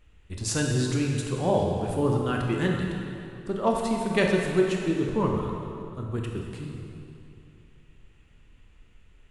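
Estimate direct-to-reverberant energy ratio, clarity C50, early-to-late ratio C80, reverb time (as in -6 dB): 0.0 dB, 1.5 dB, 3.0 dB, 2.6 s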